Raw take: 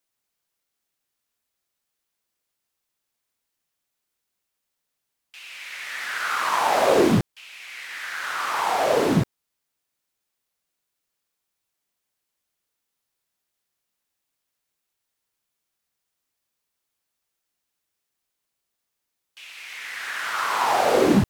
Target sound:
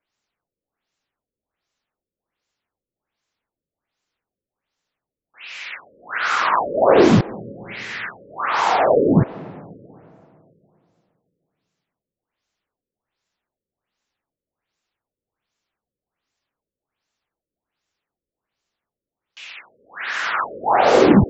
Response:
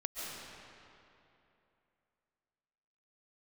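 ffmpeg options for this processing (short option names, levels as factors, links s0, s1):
-filter_complex "[0:a]asplit=2[s0][s1];[1:a]atrim=start_sample=2205,lowpass=2700[s2];[s1][s2]afir=irnorm=-1:irlink=0,volume=0.112[s3];[s0][s3]amix=inputs=2:normalize=0,afftfilt=real='re*lt(b*sr/1024,570*pow(7900/570,0.5+0.5*sin(2*PI*1.3*pts/sr)))':imag='im*lt(b*sr/1024,570*pow(7900/570,0.5+0.5*sin(2*PI*1.3*pts/sr)))':win_size=1024:overlap=0.75,volume=1.78"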